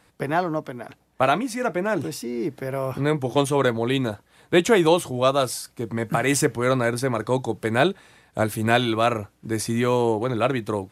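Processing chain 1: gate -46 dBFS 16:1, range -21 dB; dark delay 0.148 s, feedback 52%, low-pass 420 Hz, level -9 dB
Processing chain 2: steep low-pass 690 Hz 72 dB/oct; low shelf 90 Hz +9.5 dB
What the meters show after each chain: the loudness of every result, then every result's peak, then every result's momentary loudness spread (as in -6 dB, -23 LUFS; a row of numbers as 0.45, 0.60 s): -23.0, -24.0 LUFS; -5.0, -7.5 dBFS; 9, 8 LU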